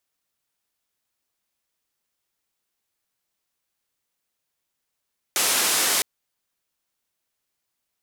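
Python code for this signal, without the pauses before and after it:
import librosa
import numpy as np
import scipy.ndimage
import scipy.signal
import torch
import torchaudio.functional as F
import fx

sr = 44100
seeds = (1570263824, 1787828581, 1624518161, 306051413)

y = fx.band_noise(sr, seeds[0], length_s=0.66, low_hz=280.0, high_hz=12000.0, level_db=-21.5)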